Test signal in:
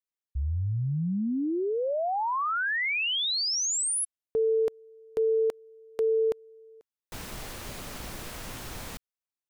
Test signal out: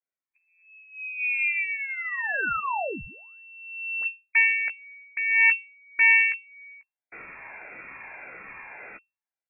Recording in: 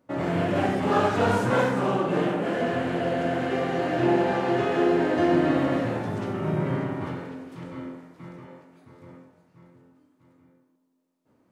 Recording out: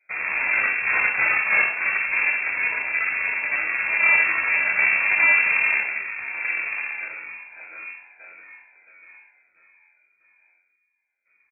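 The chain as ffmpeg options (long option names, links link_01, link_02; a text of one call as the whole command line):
ffmpeg -i in.wav -filter_complex "[0:a]afftfilt=real='re*pow(10,11/40*sin(2*PI*(1.2*log(max(b,1)*sr/1024/100)/log(2)-(1.7)*(pts-256)/sr)))':imag='im*pow(10,11/40*sin(2*PI*(1.2*log(max(b,1)*sr/1024/100)/log(2)-(1.7)*(pts-256)/sr)))':win_size=1024:overlap=0.75,highpass=frequency=240:width=0.5412,highpass=frequency=240:width=1.3066,bandreject=frequency=1500:width=14,adynamicequalizer=threshold=0.0112:dfrequency=1500:dqfactor=0.83:tfrequency=1500:tqfactor=0.83:attack=5:release=100:ratio=0.375:range=3:mode=cutabove:tftype=bell,aeval=exprs='0.335*(cos(1*acos(clip(val(0)/0.335,-1,1)))-cos(1*PI/2))+0.0841*(cos(6*acos(clip(val(0)/0.335,-1,1)))-cos(6*PI/2))':channel_layout=same,lowpass=frequency=2300:width_type=q:width=0.5098,lowpass=frequency=2300:width_type=q:width=0.6013,lowpass=frequency=2300:width_type=q:width=0.9,lowpass=frequency=2300:width_type=q:width=2.563,afreqshift=-2700,asplit=2[link_01][link_02];[link_02]adelay=15,volume=-9dB[link_03];[link_01][link_03]amix=inputs=2:normalize=0" out.wav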